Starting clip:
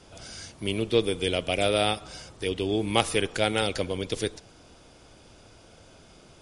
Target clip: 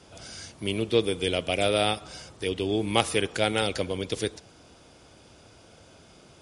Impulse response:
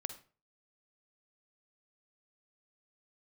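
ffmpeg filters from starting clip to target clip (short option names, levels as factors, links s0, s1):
-af "highpass=57"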